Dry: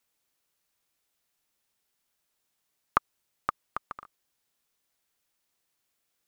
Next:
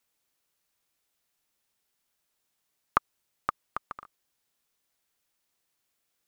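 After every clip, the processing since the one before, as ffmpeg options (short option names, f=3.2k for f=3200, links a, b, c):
-af anull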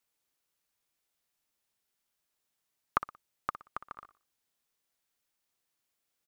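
-af "aecho=1:1:60|120|180:0.224|0.0739|0.0244,volume=-4.5dB"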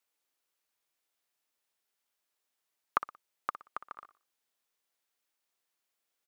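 -af "bass=f=250:g=-11,treble=f=4k:g=-2"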